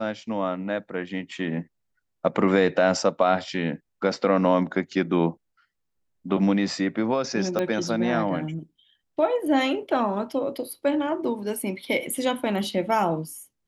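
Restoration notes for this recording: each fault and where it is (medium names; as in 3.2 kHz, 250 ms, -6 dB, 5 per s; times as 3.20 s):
7.59 s: pop -13 dBFS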